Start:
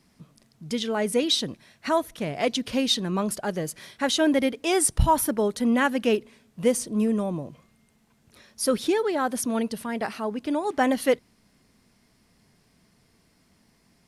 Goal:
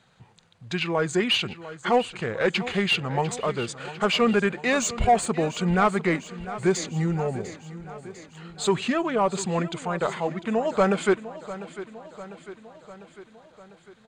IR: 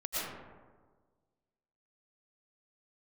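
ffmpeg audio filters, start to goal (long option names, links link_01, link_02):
-filter_complex "[0:a]bandreject=frequency=7300:width=8,asetrate=33038,aresample=44100,atempo=1.33484,equalizer=frequency=300:width_type=o:width=0.22:gain=-11.5,asplit=2[link_01][link_02];[link_02]highpass=frequency=720:poles=1,volume=14dB,asoftclip=type=tanh:threshold=-8.5dB[link_03];[link_01][link_03]amix=inputs=2:normalize=0,lowpass=frequency=2000:poles=1,volume=-6dB,aecho=1:1:699|1398|2097|2796|3495|4194:0.178|0.105|0.0619|0.0365|0.0215|0.0127"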